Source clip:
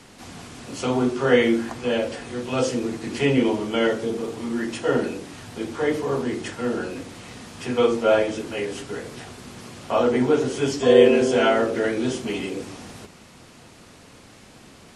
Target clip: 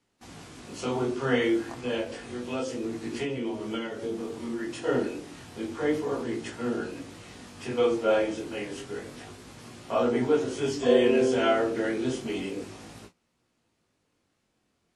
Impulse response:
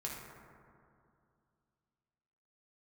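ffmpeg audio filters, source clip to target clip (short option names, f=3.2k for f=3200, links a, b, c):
-filter_complex "[0:a]agate=range=-21dB:threshold=-41dB:ratio=16:detection=peak,equalizer=f=330:t=o:w=0.45:g=3,asplit=3[a][b][c];[a]afade=t=out:st=2.01:d=0.02[d];[b]acompressor=threshold=-22dB:ratio=6,afade=t=in:st=2.01:d=0.02,afade=t=out:st=4.72:d=0.02[e];[c]afade=t=in:st=4.72:d=0.02[f];[d][e][f]amix=inputs=3:normalize=0,flanger=delay=17:depth=7:speed=0.3,volume=-3dB"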